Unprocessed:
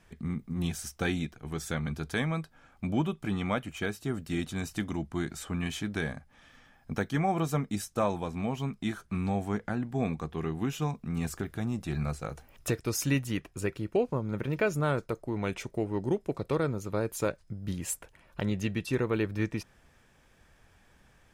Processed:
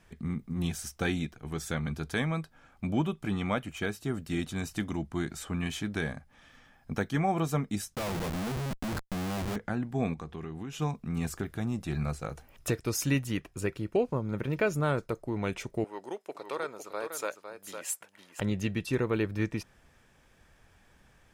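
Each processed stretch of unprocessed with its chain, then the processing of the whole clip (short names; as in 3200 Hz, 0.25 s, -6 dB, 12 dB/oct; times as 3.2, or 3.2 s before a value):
7.95–9.56 G.711 law mismatch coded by A + LPF 4200 Hz + Schmitt trigger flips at -46 dBFS
10.13–10.79 LPF 10000 Hz + compressor 4:1, threshold -36 dBFS
15.84–18.4 HPF 640 Hz + echo 0.507 s -8 dB
whole clip: dry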